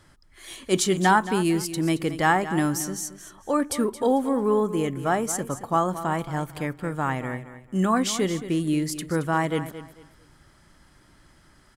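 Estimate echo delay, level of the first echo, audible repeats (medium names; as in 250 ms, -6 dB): 223 ms, -13.0 dB, 2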